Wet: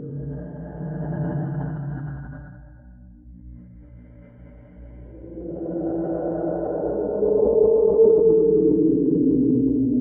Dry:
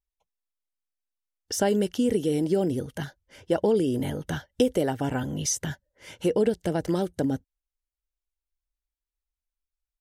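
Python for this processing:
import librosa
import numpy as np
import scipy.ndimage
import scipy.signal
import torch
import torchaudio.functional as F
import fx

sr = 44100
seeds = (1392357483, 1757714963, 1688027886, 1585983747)

y = fx.envelope_sharpen(x, sr, power=1.5)
y = scipy.signal.sosfilt(scipy.signal.cheby1(3, 1.0, 1200.0, 'lowpass', fs=sr, output='sos'), y)
y = fx.peak_eq(y, sr, hz=240.0, db=6.0, octaves=0.73)
y = y + 0.86 * np.pad(y, (int(6.8 * sr / 1000.0), 0))[:len(y)]
y = fx.add_hum(y, sr, base_hz=60, snr_db=19)
y = fx.paulstretch(y, sr, seeds[0], factor=9.4, window_s=0.25, from_s=2.87)
y = y + 10.0 ** (-18.0 / 20.0) * np.pad(y, (int(115 * sr / 1000.0), 0))[:len(y)]
y = fx.sustainer(y, sr, db_per_s=31.0)
y = F.gain(torch.from_numpy(y), -1.0).numpy()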